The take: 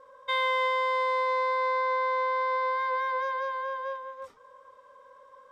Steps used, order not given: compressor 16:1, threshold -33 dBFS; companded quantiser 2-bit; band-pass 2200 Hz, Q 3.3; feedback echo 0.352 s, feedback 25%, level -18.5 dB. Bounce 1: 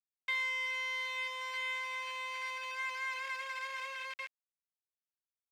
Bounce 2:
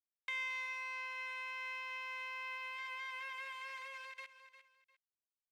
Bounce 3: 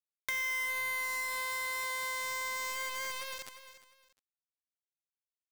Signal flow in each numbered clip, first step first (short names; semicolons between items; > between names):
feedback echo > compressor > companded quantiser > band-pass; companded quantiser > feedback echo > compressor > band-pass; band-pass > companded quantiser > feedback echo > compressor